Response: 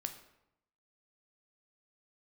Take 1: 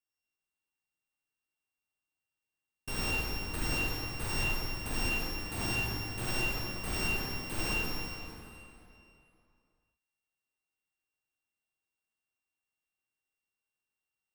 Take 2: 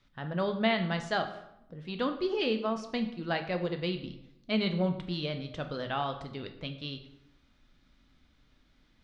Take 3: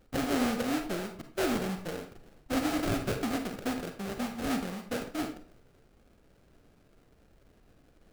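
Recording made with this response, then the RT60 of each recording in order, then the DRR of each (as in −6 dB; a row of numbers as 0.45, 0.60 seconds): 2; 2.8, 0.80, 0.45 seconds; −6.0, 6.0, 5.5 decibels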